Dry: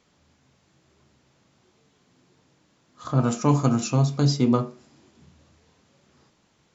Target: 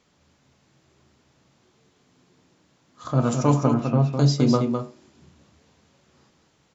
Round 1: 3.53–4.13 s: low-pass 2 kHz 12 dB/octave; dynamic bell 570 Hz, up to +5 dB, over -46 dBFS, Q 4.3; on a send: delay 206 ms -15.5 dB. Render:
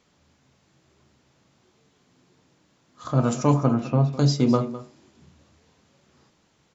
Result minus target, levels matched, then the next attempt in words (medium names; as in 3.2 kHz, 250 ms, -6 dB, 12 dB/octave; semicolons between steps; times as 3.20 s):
echo-to-direct -9.5 dB
3.53–4.13 s: low-pass 2 kHz 12 dB/octave; dynamic bell 570 Hz, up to +5 dB, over -46 dBFS, Q 4.3; on a send: delay 206 ms -6 dB